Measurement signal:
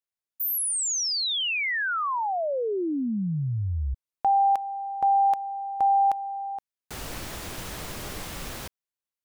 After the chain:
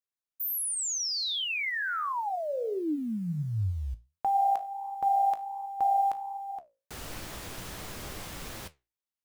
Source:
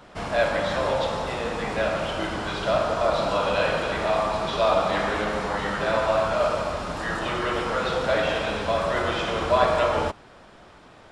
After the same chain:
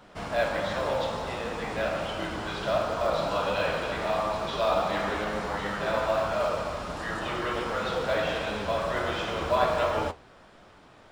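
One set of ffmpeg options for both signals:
ffmpeg -i in.wav -af "acrusher=bits=9:mode=log:mix=0:aa=0.000001,flanger=delay=9.2:depth=9.5:regen=67:speed=1.4:shape=sinusoidal" out.wav

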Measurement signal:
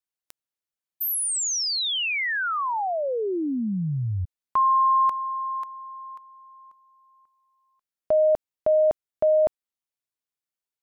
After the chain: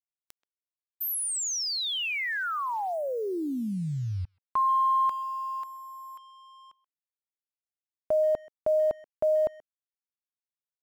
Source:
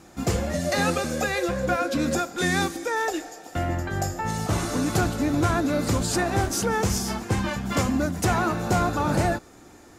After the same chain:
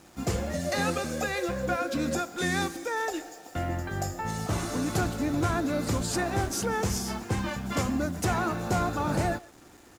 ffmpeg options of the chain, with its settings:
ffmpeg -i in.wav -filter_complex "[0:a]acrusher=bits=7:mix=0:aa=0.5,asplit=2[link_01][link_02];[link_02]adelay=130,highpass=300,lowpass=3400,asoftclip=type=hard:threshold=-22.5dB,volume=-20dB[link_03];[link_01][link_03]amix=inputs=2:normalize=0,volume=-4.5dB" out.wav

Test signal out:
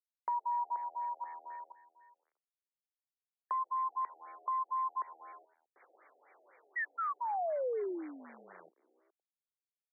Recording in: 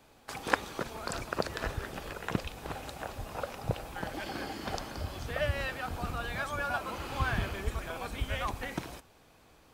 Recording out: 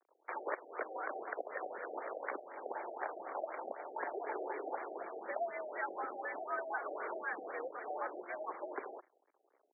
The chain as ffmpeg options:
ffmpeg -i in.wav -filter_complex "[0:a]anlmdn=0.000631,adynamicequalizer=threshold=0.00282:dfrequency=810:dqfactor=6.6:tfrequency=810:tqfactor=6.6:attack=5:release=100:ratio=0.375:range=2:mode=cutabove:tftype=bell,acompressor=threshold=-34dB:ratio=6,volume=26.5dB,asoftclip=hard,volume=-26.5dB,asplit=2[link_01][link_02];[link_02]asplit=5[link_03][link_04][link_05][link_06][link_07];[link_03]adelay=103,afreqshift=-81,volume=-22.5dB[link_08];[link_04]adelay=206,afreqshift=-162,volume=-26.7dB[link_09];[link_05]adelay=309,afreqshift=-243,volume=-30.8dB[link_10];[link_06]adelay=412,afreqshift=-324,volume=-35dB[link_11];[link_07]adelay=515,afreqshift=-405,volume=-39.1dB[link_12];[link_08][link_09][link_10][link_11][link_12]amix=inputs=5:normalize=0[link_13];[link_01][link_13]amix=inputs=2:normalize=0,asoftclip=type=tanh:threshold=-28dB,acrusher=bits=9:dc=4:mix=0:aa=0.000001,highpass=frequency=280:width_type=q:width=0.5412,highpass=frequency=280:width_type=q:width=1.307,lowpass=frequency=3600:width_type=q:width=0.5176,lowpass=frequency=3600:width_type=q:width=0.7071,lowpass=frequency=3600:width_type=q:width=1.932,afreqshift=90,afftfilt=real='re*lt(b*sr/1024,780*pow(2400/780,0.5+0.5*sin(2*PI*4*pts/sr)))':imag='im*lt(b*sr/1024,780*pow(2400/780,0.5+0.5*sin(2*PI*4*pts/sr)))':win_size=1024:overlap=0.75,volume=3dB" out.wav

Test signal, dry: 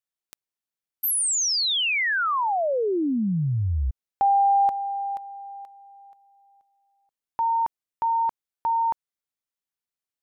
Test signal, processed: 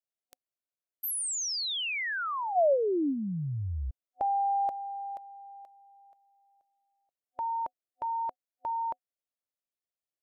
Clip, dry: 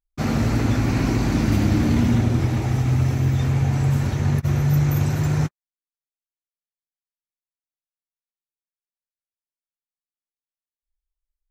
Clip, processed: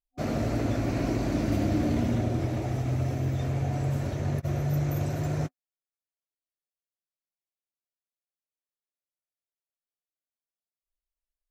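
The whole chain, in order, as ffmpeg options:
ffmpeg -i in.wav -af "superequalizer=6b=1.78:7b=1.78:8b=3.16,volume=-9dB" out.wav

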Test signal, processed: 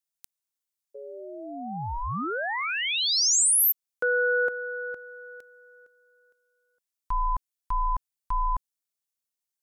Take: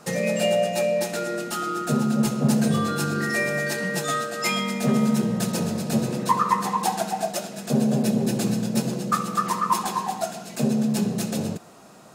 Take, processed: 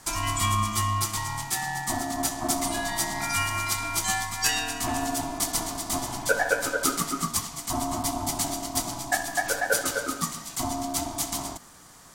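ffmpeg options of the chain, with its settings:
ffmpeg -i in.wav -af "bass=frequency=250:gain=-11,treble=frequency=4000:gain=9,aeval=exprs='val(0)*sin(2*PI*490*n/s)':channel_layout=same" out.wav

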